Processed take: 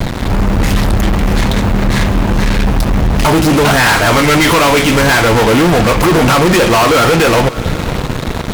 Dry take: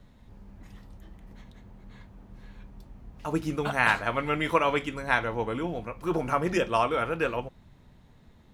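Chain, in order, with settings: compression 3:1, threshold -39 dBFS, peak gain reduction 16 dB; fuzz box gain 55 dB, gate -55 dBFS; on a send: echo that smears into a reverb 614 ms, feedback 42%, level -16 dB; on the sum: trim +5.5 dB

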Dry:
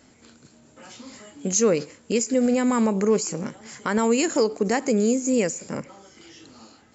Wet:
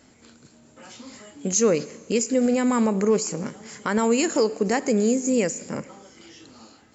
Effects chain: Schroeder reverb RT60 2 s, combs from 30 ms, DRR 19 dB

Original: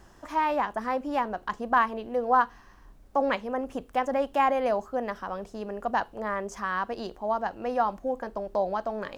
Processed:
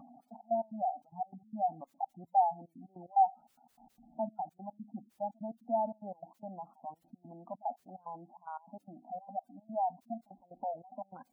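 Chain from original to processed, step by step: gliding tape speed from 72% -> 90%; two resonant band-passes 430 Hz, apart 1.6 oct; trance gate "xx.x.x.x" 147 bpm -24 dB; upward compressor, threshold -46 dBFS; word length cut 12-bit, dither triangular; spectral gate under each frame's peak -15 dB strong

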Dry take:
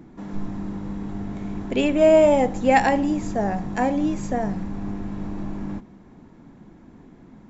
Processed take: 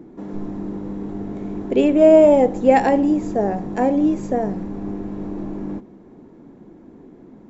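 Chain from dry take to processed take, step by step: peaking EQ 400 Hz +13 dB 1.7 oct; trim -4.5 dB

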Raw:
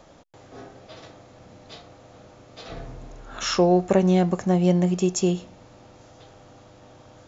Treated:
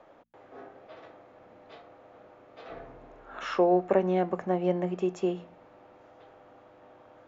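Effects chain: three-band isolator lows -14 dB, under 280 Hz, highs -23 dB, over 2.6 kHz; de-hum 57.47 Hz, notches 5; trim -2.5 dB

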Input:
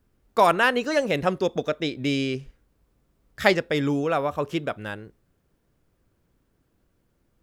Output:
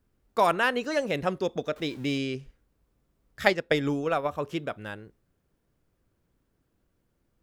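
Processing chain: 1.76–2.18 s: jump at every zero crossing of -40.5 dBFS; 3.45–4.28 s: transient shaper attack +10 dB, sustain -6 dB; trim -4.5 dB

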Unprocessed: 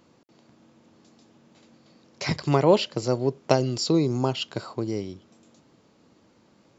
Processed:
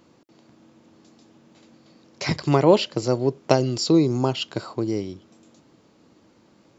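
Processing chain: peaking EQ 320 Hz +3.5 dB 0.29 oct; trim +2 dB

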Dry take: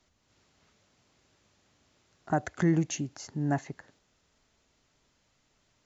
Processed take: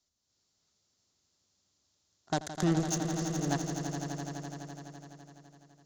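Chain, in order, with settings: Chebyshev shaper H 7 -19 dB, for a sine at -14 dBFS; resonant high shelf 3.4 kHz +10 dB, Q 1.5; echo with a slow build-up 84 ms, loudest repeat 5, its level -10 dB; trim -3 dB

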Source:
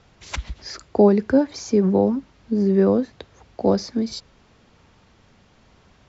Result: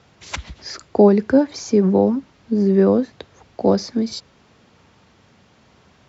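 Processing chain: high-pass 86 Hz; trim +2.5 dB

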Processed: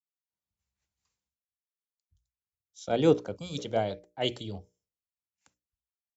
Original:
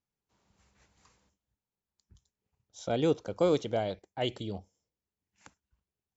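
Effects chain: hum notches 60/120/180/240/300/360/420/480/540/600 Hz; time-frequency box 3.36–3.58 s, 300–2300 Hz -19 dB; three bands expanded up and down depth 70%

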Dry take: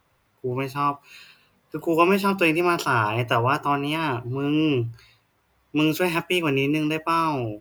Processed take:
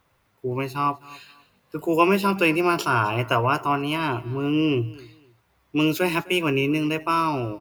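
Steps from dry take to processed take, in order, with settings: feedback delay 255 ms, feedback 25%, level -21.5 dB

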